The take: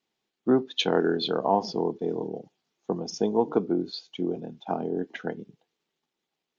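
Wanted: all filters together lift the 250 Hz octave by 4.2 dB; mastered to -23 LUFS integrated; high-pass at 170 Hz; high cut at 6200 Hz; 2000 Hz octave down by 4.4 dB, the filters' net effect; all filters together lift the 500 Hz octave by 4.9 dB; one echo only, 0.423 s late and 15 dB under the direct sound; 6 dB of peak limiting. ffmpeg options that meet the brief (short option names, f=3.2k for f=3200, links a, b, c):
-af "highpass=170,lowpass=6.2k,equalizer=f=250:t=o:g=4.5,equalizer=f=500:t=o:g=5,equalizer=f=2k:t=o:g=-7,alimiter=limit=-12dB:level=0:latency=1,aecho=1:1:423:0.178,volume=3dB"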